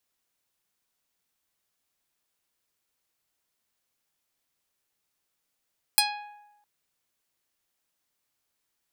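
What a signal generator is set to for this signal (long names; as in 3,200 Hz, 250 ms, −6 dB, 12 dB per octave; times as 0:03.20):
Karplus-Strong string G#5, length 0.66 s, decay 0.99 s, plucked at 0.45, medium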